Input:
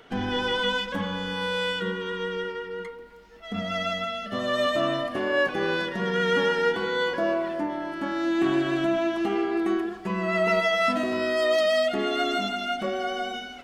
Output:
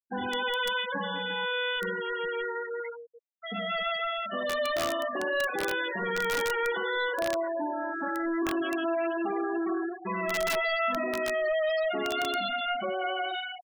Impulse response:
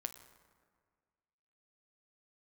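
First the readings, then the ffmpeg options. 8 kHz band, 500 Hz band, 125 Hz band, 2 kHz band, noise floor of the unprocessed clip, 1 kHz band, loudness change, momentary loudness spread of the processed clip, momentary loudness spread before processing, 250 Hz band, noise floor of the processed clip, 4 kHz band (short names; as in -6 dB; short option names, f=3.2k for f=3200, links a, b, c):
+2.0 dB, -4.5 dB, -11.0 dB, -2.0 dB, -42 dBFS, -2.0 dB, -3.5 dB, 5 LU, 8 LU, -6.5 dB, -43 dBFS, -3.5 dB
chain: -filter_complex "[0:a]asplit=2[a][b];[b]highpass=f=720:p=1,volume=21dB,asoftclip=type=tanh:threshold=-12.5dB[c];[a][c]amix=inputs=2:normalize=0,lowpass=f=3.7k:p=1,volume=-6dB,afftfilt=real='re*gte(hypot(re,im),0.158)':imag='im*gte(hypot(re,im),0.158)':win_size=1024:overlap=0.75,aeval=exprs='(mod(4.47*val(0)+1,2)-1)/4.47':c=same,volume=-9dB"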